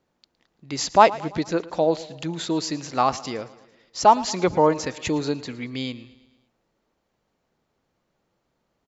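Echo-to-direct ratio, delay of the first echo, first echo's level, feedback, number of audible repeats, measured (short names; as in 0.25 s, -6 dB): -17.5 dB, 0.112 s, -19.0 dB, 56%, 4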